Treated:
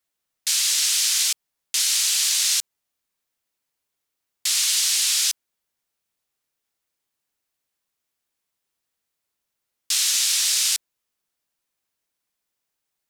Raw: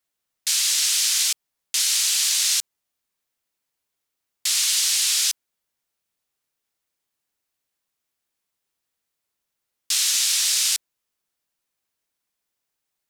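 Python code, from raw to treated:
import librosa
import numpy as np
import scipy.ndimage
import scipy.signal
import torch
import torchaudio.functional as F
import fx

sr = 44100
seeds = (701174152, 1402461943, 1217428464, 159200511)

y = fx.highpass(x, sr, hz=fx.line((4.72, 430.0), (5.21, 260.0)), slope=12, at=(4.72, 5.21), fade=0.02)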